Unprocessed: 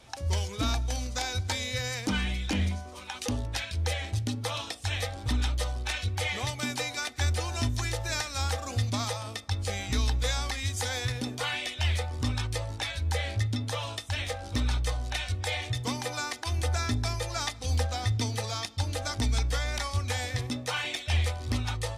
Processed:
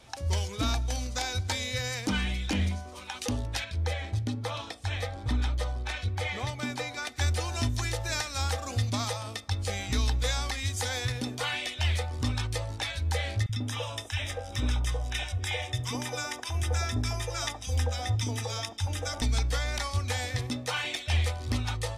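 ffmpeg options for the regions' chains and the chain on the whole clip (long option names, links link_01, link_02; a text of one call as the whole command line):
ffmpeg -i in.wav -filter_complex "[0:a]asettb=1/sr,asplit=3[link_01][link_02][link_03];[link_01]atrim=end=3.644[link_04];[link_02]atrim=start=3.64:end=7.07,asetpts=PTS-STARTPTS,afade=type=in:duration=0.004:curve=qsin,afade=type=out:start_time=3.426:duration=0.004:curve=qsin,highshelf=frequency=4100:gain=-10,bandreject=frequency=2800:width=14[link_05];[link_03]atrim=start=7.066[link_06];[link_04][link_05]acrossfade=duration=0.004:curve1=hsin:curve2=qsin[link_07];[link_07][link_06]acrossfade=duration=0.004:curve1=qsin:curve2=hsin,asettb=1/sr,asplit=3[link_08][link_09][link_10];[link_08]atrim=end=13.464[link_11];[link_09]atrim=start=13.46:end=19.22,asetpts=PTS-STARTPTS,afade=type=in:duration=0.004:curve=qsin,afade=type=out:start_time=5.756:duration=0.004:curve=qsin,asuperstop=centerf=4300:order=8:qfactor=5.9,acrossover=split=220|1000[link_12][link_13][link_14];[link_12]adelay=30[link_15];[link_13]adelay=70[link_16];[link_15][link_16][link_14]amix=inputs=3:normalize=0,atrim=end_sample=254016[link_17];[link_10]atrim=start=19.216[link_18];[link_11][link_17]acrossfade=duration=0.004:curve1=hsin:curve2=qsin[link_19];[link_19][link_18]acrossfade=duration=0.004:curve1=qsin:curve2=hsin" out.wav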